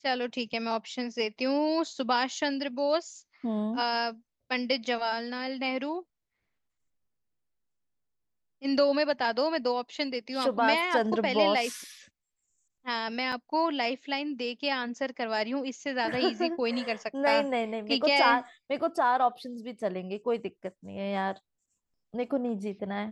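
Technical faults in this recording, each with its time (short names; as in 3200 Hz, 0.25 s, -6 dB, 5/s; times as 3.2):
13.32–13.33 gap 5.1 ms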